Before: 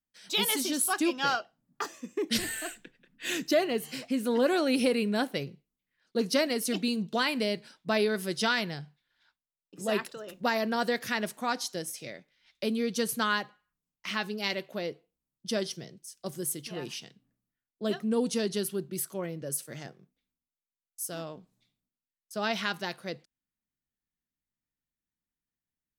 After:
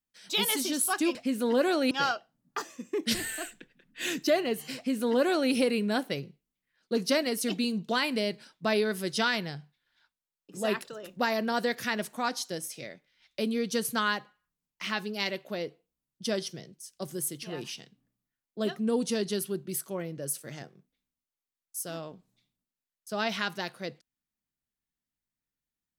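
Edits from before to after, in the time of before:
4–4.76 copy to 1.15

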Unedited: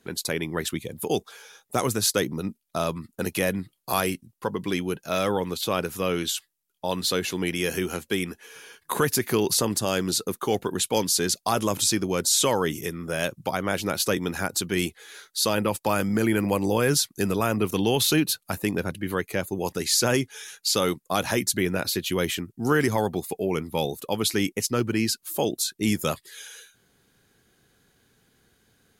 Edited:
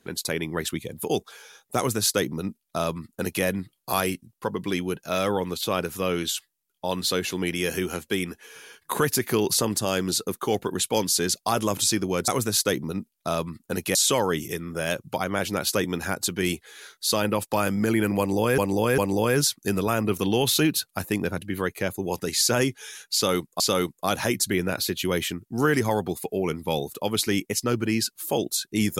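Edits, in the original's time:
1.77–3.44 copy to 12.28
16.51–16.91 loop, 3 plays
20.67–21.13 loop, 2 plays

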